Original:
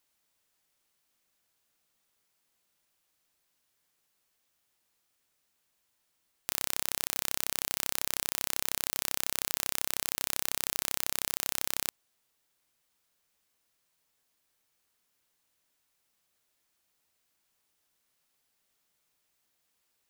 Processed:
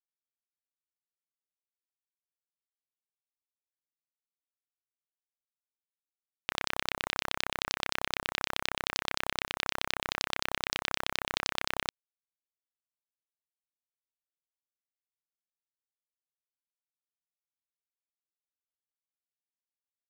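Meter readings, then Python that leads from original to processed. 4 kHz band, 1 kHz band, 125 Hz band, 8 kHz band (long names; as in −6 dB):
+3.0 dB, +6.0 dB, +3.0 dB, −9.5 dB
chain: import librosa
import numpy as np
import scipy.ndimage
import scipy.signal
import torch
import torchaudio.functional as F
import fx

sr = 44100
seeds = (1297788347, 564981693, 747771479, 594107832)

y = fx.filter_lfo_lowpass(x, sr, shape='saw_down', hz=9.6, low_hz=820.0, high_hz=5100.0, q=2.4)
y = fx.quant_dither(y, sr, seeds[0], bits=6, dither='none')
y = y * 10.0 ** (2.5 / 20.0)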